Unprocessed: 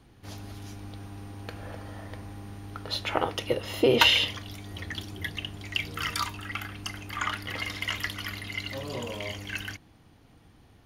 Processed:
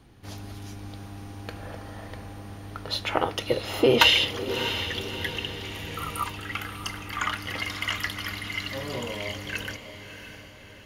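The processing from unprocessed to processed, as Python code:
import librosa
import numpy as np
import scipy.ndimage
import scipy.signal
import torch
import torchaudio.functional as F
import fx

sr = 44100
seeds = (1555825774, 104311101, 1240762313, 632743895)

y = fx.spec_repair(x, sr, seeds[0], start_s=5.73, length_s=0.51, low_hz=1400.0, high_hz=8300.0, source='before')
y = fx.echo_diffused(y, sr, ms=645, feedback_pct=49, wet_db=-10)
y = F.gain(torch.from_numpy(y), 2.0).numpy()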